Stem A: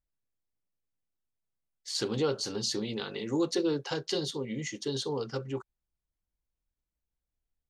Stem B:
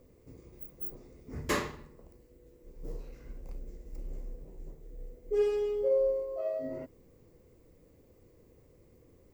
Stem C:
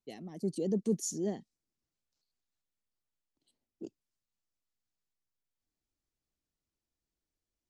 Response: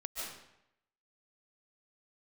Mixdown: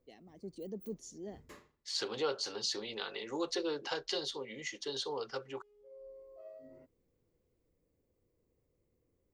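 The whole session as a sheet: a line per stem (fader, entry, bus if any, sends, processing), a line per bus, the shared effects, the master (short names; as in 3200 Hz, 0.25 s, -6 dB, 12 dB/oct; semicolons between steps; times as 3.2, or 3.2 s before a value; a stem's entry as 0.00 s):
-1.0 dB, 0.00 s, no send, three-band isolator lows -18 dB, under 430 Hz, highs -12 dB, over 6200 Hz
-17.5 dB, 0.00 s, no send, auto duck -20 dB, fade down 0.50 s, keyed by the first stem
-7.0 dB, 0.00 s, no send, Bessel low-pass 4300 Hz, order 2; low shelf 290 Hz -10 dB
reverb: off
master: dry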